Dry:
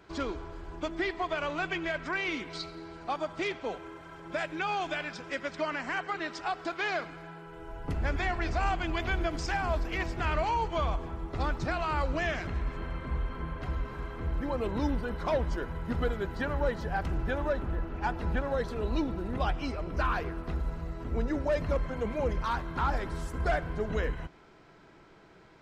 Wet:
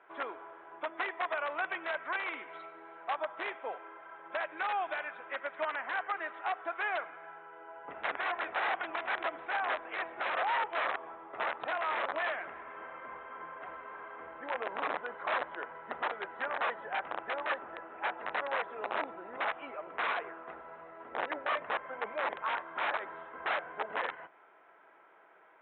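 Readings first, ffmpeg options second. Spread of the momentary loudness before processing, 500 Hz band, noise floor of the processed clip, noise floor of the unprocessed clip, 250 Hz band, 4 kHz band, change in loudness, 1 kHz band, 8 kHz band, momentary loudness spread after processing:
7 LU, -5.5 dB, -60 dBFS, -56 dBFS, -16.5 dB, -3.5 dB, -3.0 dB, -0.5 dB, under -25 dB, 13 LU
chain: -af "aresample=8000,aeval=exprs='(mod(15*val(0)+1,2)-1)/15':c=same,aresample=44100,asuperpass=centerf=1100:order=4:qfactor=0.72"

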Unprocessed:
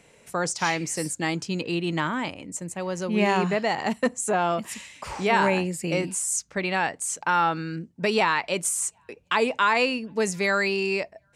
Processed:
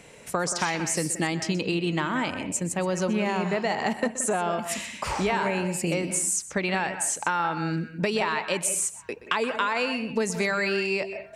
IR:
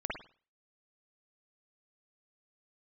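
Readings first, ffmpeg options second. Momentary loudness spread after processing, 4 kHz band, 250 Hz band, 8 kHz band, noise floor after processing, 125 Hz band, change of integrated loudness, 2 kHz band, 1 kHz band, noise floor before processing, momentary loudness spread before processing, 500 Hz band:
4 LU, -1.0 dB, 0.0 dB, +1.5 dB, -45 dBFS, +0.5 dB, -1.5 dB, -2.0 dB, -3.0 dB, -61 dBFS, 9 LU, -1.5 dB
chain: -filter_complex "[0:a]acompressor=threshold=-30dB:ratio=6,asplit=2[a][b];[1:a]atrim=start_sample=2205,adelay=125[c];[b][c]afir=irnorm=-1:irlink=0,volume=-13dB[d];[a][d]amix=inputs=2:normalize=0,volume=6.5dB"

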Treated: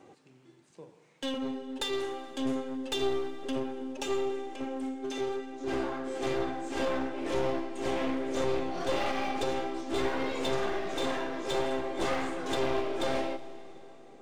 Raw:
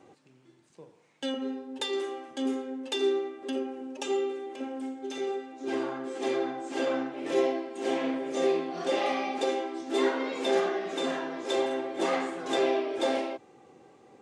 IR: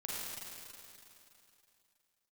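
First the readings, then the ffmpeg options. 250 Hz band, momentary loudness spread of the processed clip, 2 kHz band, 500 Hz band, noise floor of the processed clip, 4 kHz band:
-1.5 dB, 6 LU, -1.0 dB, -3.0 dB, -59 dBFS, -1.0 dB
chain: -filter_complex "[0:a]aeval=exprs='clip(val(0),-1,0.0211)':c=same,alimiter=limit=-19.5dB:level=0:latency=1:release=92,asplit=2[a][b];[1:a]atrim=start_sample=2205[c];[b][c]afir=irnorm=-1:irlink=0,volume=-14dB[d];[a][d]amix=inputs=2:normalize=0"

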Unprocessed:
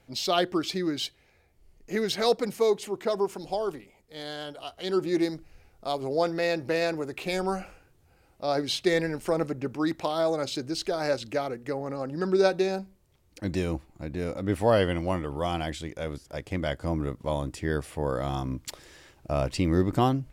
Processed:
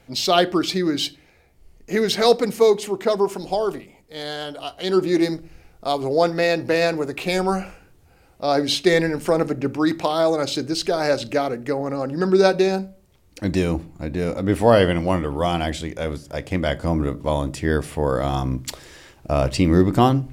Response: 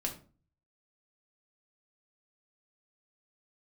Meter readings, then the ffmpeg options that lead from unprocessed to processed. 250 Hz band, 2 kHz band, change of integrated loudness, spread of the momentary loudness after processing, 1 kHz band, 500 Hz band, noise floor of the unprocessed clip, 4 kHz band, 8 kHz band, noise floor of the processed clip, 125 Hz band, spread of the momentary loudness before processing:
+8.0 dB, +7.5 dB, +7.5 dB, 12 LU, +7.5 dB, +7.5 dB, -63 dBFS, +7.5 dB, +7.5 dB, -55 dBFS, +7.5 dB, 12 LU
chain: -filter_complex "[0:a]asplit=2[a][b];[1:a]atrim=start_sample=2205[c];[b][c]afir=irnorm=-1:irlink=0,volume=-11.5dB[d];[a][d]amix=inputs=2:normalize=0,volume=5.5dB"

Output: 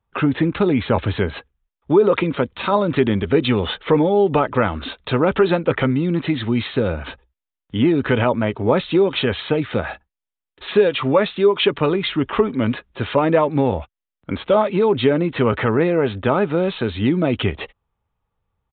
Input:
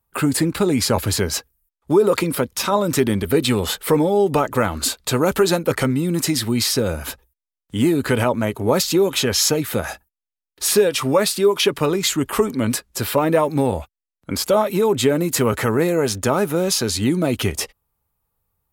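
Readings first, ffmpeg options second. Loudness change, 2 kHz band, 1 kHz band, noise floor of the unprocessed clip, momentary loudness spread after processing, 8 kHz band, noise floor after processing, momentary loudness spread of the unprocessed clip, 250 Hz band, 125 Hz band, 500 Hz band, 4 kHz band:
0.0 dB, +1.0 dB, +1.0 dB, under -85 dBFS, 8 LU, under -40 dB, under -85 dBFS, 7 LU, +1.0 dB, +1.0 dB, +1.0 dB, -4.0 dB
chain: -af "aresample=8000,aresample=44100,volume=1dB"

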